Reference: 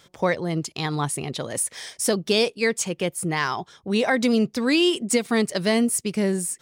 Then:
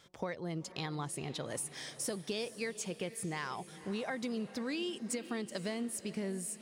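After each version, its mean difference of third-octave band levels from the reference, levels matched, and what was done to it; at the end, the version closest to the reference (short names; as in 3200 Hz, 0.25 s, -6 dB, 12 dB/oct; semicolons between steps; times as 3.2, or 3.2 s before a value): 6.5 dB: high shelf 10000 Hz -5 dB; compressor 5:1, threshold -28 dBFS, peak gain reduction 11.5 dB; diffused feedback echo 0.485 s, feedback 48%, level -14.5 dB; gain -7.5 dB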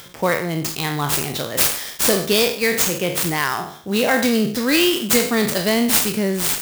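10.5 dB: spectral trails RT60 0.54 s; high shelf 6500 Hz +9 dB; upward compressor, threshold -34 dBFS; clock jitter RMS 0.027 ms; gain +1.5 dB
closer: first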